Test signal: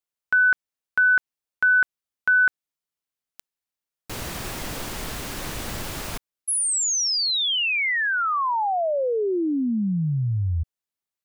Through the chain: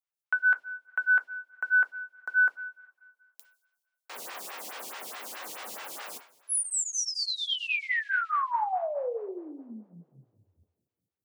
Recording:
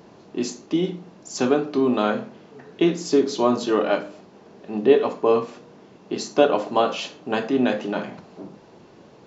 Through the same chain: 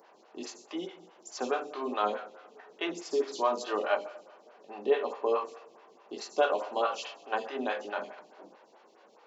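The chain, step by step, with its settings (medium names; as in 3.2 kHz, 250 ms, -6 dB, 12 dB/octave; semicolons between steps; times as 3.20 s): high-pass 610 Hz 12 dB/octave; two-slope reverb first 0.39 s, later 2.1 s, from -18 dB, DRR 6 dB; lamp-driven phase shifter 4.7 Hz; trim -3.5 dB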